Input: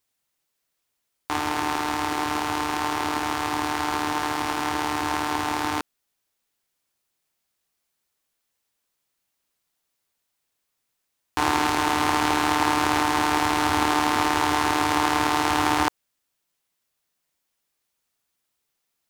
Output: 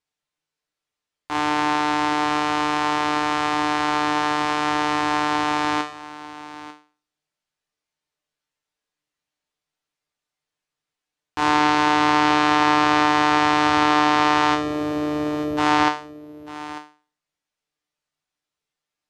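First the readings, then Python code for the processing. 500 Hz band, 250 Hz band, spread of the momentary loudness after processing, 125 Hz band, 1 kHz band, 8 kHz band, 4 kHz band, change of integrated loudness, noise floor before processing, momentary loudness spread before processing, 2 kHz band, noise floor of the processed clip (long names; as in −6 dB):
+4.5 dB, +4.5 dB, 17 LU, +1.0 dB, +4.0 dB, −4.0 dB, +2.5 dB, +3.5 dB, −78 dBFS, 5 LU, +3.5 dB, below −85 dBFS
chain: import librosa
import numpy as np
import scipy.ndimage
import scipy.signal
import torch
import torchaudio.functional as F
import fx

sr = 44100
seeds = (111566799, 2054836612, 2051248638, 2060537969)

y = fx.spec_box(x, sr, start_s=14.54, length_s=1.03, low_hz=710.0, high_hz=11000.0, gain_db=-23)
y = fx.comb_fb(y, sr, f0_hz=150.0, decay_s=0.39, harmonics='all', damping=0.0, mix_pct=80)
y = y + 10.0 ** (-16.0 / 20.0) * np.pad(y, (int(895 * sr / 1000.0), 0))[:len(y)]
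y = fx.env_lowpass_down(y, sr, base_hz=2500.0, full_db=-12.5)
y = fx.air_absorb(y, sr, metres=69.0)
y = y * librosa.db_to_amplitude(6.5)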